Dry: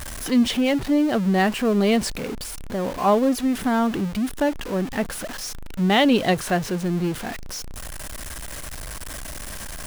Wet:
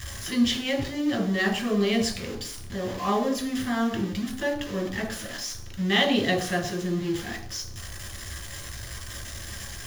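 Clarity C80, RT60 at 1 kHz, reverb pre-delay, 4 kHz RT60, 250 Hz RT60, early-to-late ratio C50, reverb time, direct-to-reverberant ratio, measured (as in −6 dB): 11.5 dB, 0.50 s, 3 ms, 0.70 s, 0.70 s, 8.5 dB, 0.55 s, 0.5 dB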